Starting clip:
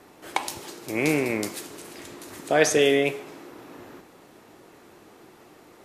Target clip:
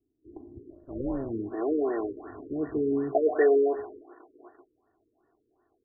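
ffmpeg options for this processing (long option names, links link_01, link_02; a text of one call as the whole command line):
ffmpeg -i in.wav -filter_complex "[0:a]agate=range=-20dB:threshold=-42dB:ratio=16:detection=peak,aecho=1:1:2.8:0.99,acrossover=split=330[link_01][link_02];[link_02]adelay=640[link_03];[link_01][link_03]amix=inputs=2:normalize=0,asettb=1/sr,asplit=3[link_04][link_05][link_06];[link_04]atrim=end=0.704[link_07];[link_05]atrim=start=0.7:end=1.31,asetpts=PTS-STARTPTS,afade=type=in:duration=0.004:curve=qsin,afade=type=out:start_time=0.606:duration=0.004:curve=qsin,tremolo=f=270:d=0.857[link_08];[link_06]atrim=start=1.306[link_09];[link_07][link_08]acrossfade=duration=0.004:curve1=hsin:curve2=qsin[link_10];[link_10][link_09]acrossfade=duration=0.004:curve1=qsin:curve2=hsin,afftfilt=real='re*lt(b*sr/1024,530*pow(2000/530,0.5+0.5*sin(2*PI*2.7*pts/sr)))':imag='im*lt(b*sr/1024,530*pow(2000/530,0.5+0.5*sin(2*PI*2.7*pts/sr)))':win_size=1024:overlap=0.75,volume=-1.5dB" out.wav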